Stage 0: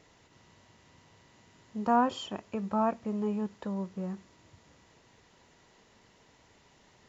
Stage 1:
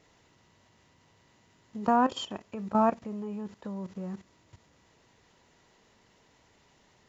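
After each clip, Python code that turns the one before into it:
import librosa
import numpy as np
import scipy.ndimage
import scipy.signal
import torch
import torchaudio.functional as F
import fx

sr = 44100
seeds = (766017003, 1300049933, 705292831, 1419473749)

y = fx.level_steps(x, sr, step_db=14)
y = fx.quant_float(y, sr, bits=8)
y = y * 10.0 ** (6.0 / 20.0)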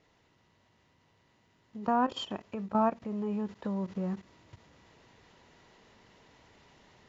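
y = scipy.signal.sosfilt(scipy.signal.butter(2, 5100.0, 'lowpass', fs=sr, output='sos'), x)
y = fx.rider(y, sr, range_db=4, speed_s=0.5)
y = fx.end_taper(y, sr, db_per_s=400.0)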